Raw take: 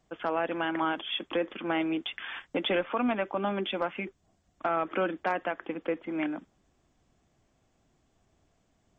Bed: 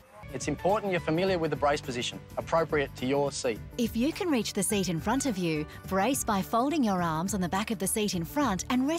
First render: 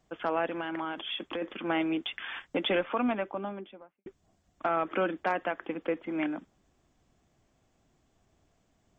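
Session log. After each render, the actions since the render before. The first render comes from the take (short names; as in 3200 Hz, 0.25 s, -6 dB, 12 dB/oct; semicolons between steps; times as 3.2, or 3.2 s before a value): 0.49–1.42 compressor 4:1, threshold -31 dBFS; 2.88–4.06 studio fade out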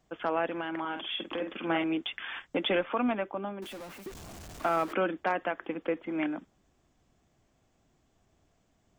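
0.8–1.84 doubler 48 ms -6.5 dB; 3.62–4.93 zero-crossing step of -40 dBFS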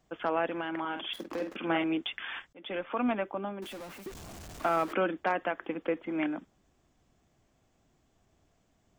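1.13–1.56 median filter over 15 samples; 2.53–3.09 fade in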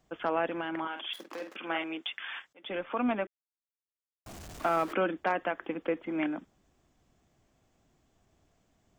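0.87–2.64 HPF 780 Hz 6 dB/oct; 3.27–4.26 mute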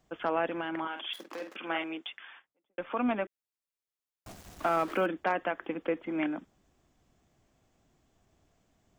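1.78–2.78 studio fade out; 4.32–5.06 sample gate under -45.5 dBFS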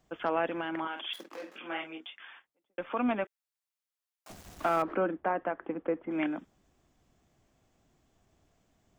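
1.29–2.2 detuned doubles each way 19 cents; 3.24–4.3 HPF 580 Hz; 4.82–6.11 LPF 1400 Hz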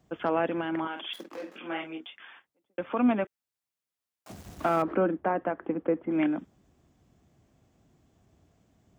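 HPF 64 Hz; low shelf 410 Hz +9 dB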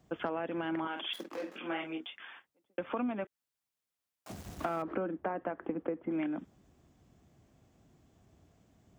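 compressor 10:1, threshold -31 dBFS, peak gain reduction 12 dB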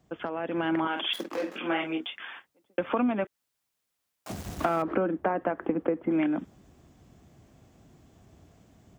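AGC gain up to 8 dB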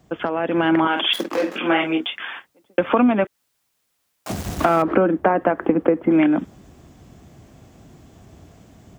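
gain +10 dB; limiter -2 dBFS, peak gain reduction 1.5 dB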